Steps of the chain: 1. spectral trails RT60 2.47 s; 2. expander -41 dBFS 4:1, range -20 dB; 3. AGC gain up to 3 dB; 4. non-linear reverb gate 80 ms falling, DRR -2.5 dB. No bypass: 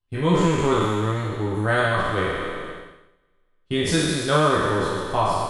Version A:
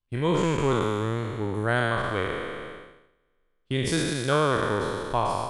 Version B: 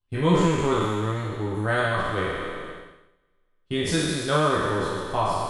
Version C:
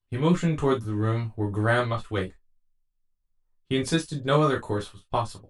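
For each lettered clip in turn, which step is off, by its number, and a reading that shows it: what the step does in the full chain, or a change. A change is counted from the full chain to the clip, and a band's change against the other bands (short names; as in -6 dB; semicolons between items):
4, crest factor change +1.5 dB; 3, momentary loudness spread change +1 LU; 1, 125 Hz band +5.0 dB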